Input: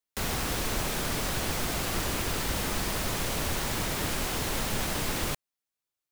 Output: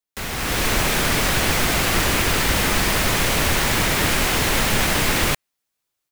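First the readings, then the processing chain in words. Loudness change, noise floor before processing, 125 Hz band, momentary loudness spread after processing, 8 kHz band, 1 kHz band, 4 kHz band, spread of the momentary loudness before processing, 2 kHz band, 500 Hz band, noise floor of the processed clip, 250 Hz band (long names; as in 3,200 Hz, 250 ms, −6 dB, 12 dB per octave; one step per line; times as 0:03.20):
+11.0 dB, below −85 dBFS, +9.5 dB, 3 LU, +10.0 dB, +11.0 dB, +11.5 dB, 1 LU, +14.0 dB, +10.0 dB, −80 dBFS, +9.5 dB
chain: dynamic equaliser 2,100 Hz, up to +5 dB, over −49 dBFS, Q 1.1
automatic gain control gain up to 10 dB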